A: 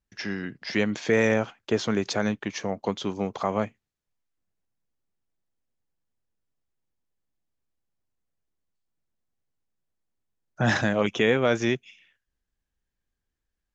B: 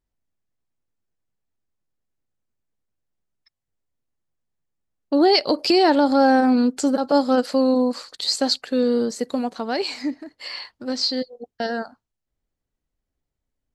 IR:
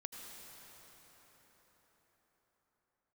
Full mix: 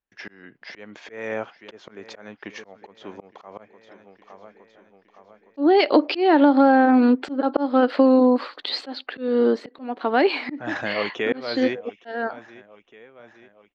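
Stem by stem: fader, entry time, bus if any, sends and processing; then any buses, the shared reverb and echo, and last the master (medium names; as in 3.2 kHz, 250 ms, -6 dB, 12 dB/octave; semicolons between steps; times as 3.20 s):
-0.5 dB, 0.00 s, no send, echo send -18 dB, none
+2.0 dB, 0.45 s, no send, no echo send, FFT filter 180 Hz 0 dB, 290 Hz +14 dB, 490 Hz +5 dB, 3.4 kHz +8 dB, 7 kHz -15 dB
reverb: none
echo: feedback delay 864 ms, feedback 54%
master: tone controls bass -13 dB, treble -14 dB; slow attack 332 ms; compression 4:1, threshold -12 dBFS, peak gain reduction 7.5 dB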